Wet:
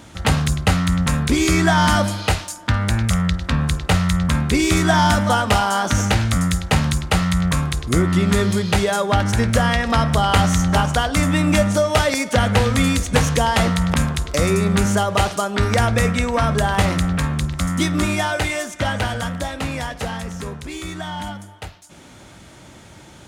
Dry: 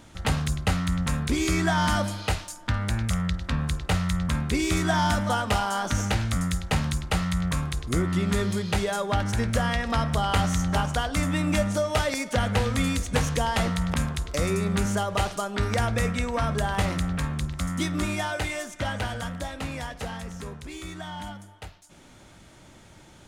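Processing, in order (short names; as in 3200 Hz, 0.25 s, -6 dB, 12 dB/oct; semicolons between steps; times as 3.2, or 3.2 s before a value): HPF 49 Hz; gain +8 dB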